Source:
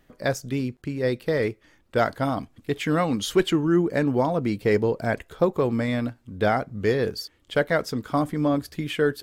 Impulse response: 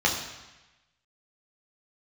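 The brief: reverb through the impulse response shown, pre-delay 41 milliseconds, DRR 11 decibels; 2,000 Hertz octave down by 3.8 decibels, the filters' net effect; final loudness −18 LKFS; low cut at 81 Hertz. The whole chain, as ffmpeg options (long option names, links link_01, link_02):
-filter_complex "[0:a]highpass=81,equalizer=frequency=2000:width_type=o:gain=-5,asplit=2[link_01][link_02];[1:a]atrim=start_sample=2205,adelay=41[link_03];[link_02][link_03]afir=irnorm=-1:irlink=0,volume=-25.5dB[link_04];[link_01][link_04]amix=inputs=2:normalize=0,volume=7dB"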